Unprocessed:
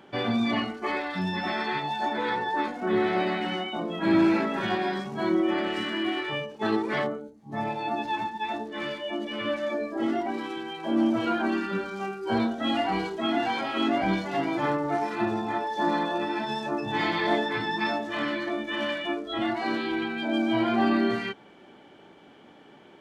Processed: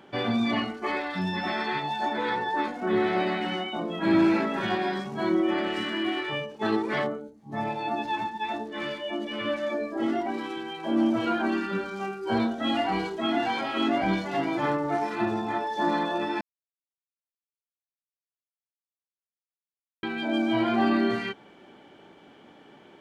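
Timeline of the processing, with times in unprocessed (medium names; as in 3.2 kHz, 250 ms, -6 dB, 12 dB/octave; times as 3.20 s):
16.41–20.03 s: mute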